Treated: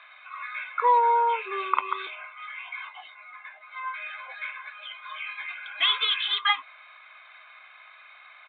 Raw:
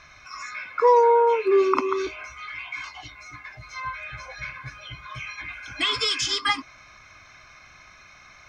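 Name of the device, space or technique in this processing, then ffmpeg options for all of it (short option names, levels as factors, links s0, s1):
musical greeting card: -filter_complex "[0:a]aresample=8000,aresample=44100,highpass=f=670:w=0.5412,highpass=f=670:w=1.3066,equalizer=f=3800:t=o:w=0.31:g=6.5,asettb=1/sr,asplit=3[s0][s1][s2];[s0]atrim=end=2.154[s3];[s1]atrim=start=2.15:end=3.94,asetpts=PTS-STARTPTS,afade=t=in:d=0.004:c=qsin,afade=t=out:st=1.786:d=0.004:c=qsin,lowpass=f=2000:p=1[s4];[s2]atrim=start=3.936[s5];[s3][s4]acrossfade=d=0.004:c1=hsin:c2=qsin[s6];[s6][s5]acrossfade=d=0.004:c1=qsin:c2=hsin"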